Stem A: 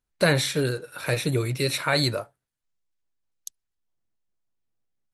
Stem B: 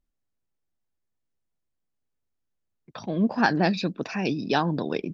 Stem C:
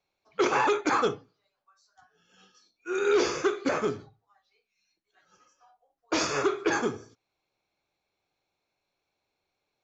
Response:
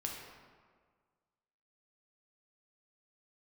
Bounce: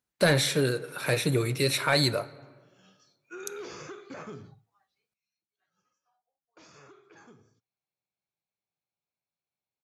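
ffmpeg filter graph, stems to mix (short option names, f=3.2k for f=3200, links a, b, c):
-filter_complex "[0:a]volume=-1dB,asplit=2[a][b];[b]volume=-14.5dB[c];[2:a]acompressor=threshold=-34dB:ratio=3,alimiter=level_in=4.5dB:limit=-24dB:level=0:latency=1:release=97,volume=-4.5dB,lowshelf=f=230:t=q:w=1.5:g=7,adelay=450,volume=-3.5dB,afade=t=in:st=2.26:d=0.5:silence=0.237137,afade=t=out:st=4.62:d=0.49:silence=0.237137[d];[3:a]atrim=start_sample=2205[e];[c][e]afir=irnorm=-1:irlink=0[f];[a][d][f]amix=inputs=3:normalize=0,highpass=110,asoftclip=type=tanh:threshold=-11.5dB"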